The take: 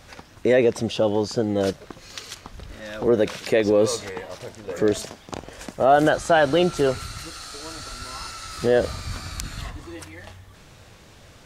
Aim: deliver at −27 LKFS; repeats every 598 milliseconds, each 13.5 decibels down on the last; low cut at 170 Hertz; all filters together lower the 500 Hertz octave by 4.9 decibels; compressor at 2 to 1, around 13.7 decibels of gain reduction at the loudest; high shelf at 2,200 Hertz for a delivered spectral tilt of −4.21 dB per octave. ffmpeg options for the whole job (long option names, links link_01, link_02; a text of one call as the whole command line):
ffmpeg -i in.wav -af "highpass=170,equalizer=frequency=500:width_type=o:gain=-5.5,highshelf=frequency=2200:gain=-6,acompressor=threshold=-42dB:ratio=2,aecho=1:1:598|1196:0.211|0.0444,volume=12dB" out.wav